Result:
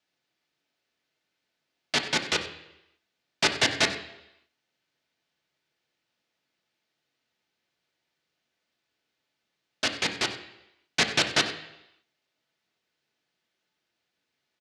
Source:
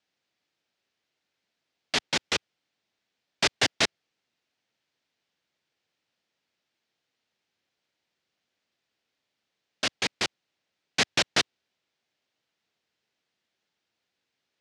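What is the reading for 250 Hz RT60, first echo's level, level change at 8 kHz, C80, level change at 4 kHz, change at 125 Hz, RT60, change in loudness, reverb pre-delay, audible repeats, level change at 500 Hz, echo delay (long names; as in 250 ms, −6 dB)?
0.85 s, −16.0 dB, 0.0 dB, 11.5 dB, +1.0 dB, +2.0 dB, 0.90 s, +1.0 dB, 3 ms, 1, +1.5 dB, 94 ms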